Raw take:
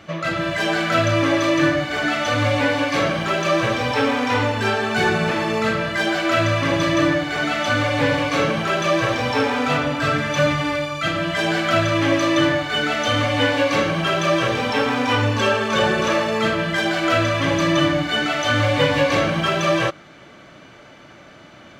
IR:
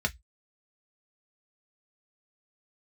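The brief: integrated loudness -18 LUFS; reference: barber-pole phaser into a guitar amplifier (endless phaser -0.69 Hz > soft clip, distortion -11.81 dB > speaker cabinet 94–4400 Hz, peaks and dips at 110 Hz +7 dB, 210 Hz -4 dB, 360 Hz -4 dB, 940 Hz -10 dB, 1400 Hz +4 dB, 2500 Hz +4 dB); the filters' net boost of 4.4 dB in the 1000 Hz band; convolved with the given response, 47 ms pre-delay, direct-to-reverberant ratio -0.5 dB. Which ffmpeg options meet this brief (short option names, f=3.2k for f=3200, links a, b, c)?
-filter_complex "[0:a]equalizer=f=1k:t=o:g=8,asplit=2[a][b];[1:a]atrim=start_sample=2205,adelay=47[c];[b][c]afir=irnorm=-1:irlink=0,volume=-7dB[d];[a][d]amix=inputs=2:normalize=0,asplit=2[e][f];[f]afreqshift=-0.69[g];[e][g]amix=inputs=2:normalize=1,asoftclip=threshold=-15.5dB,highpass=94,equalizer=f=110:t=q:w=4:g=7,equalizer=f=210:t=q:w=4:g=-4,equalizer=f=360:t=q:w=4:g=-4,equalizer=f=940:t=q:w=4:g=-10,equalizer=f=1.4k:t=q:w=4:g=4,equalizer=f=2.5k:t=q:w=4:g=4,lowpass=f=4.4k:w=0.5412,lowpass=f=4.4k:w=1.3066,volume=2dB"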